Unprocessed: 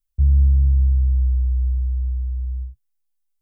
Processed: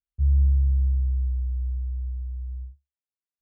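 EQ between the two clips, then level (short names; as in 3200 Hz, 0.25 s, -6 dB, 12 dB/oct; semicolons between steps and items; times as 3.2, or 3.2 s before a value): HPF 54 Hz 12 dB/oct; air absorption 350 m; bell 70 Hz +6 dB 0.33 oct; -9.0 dB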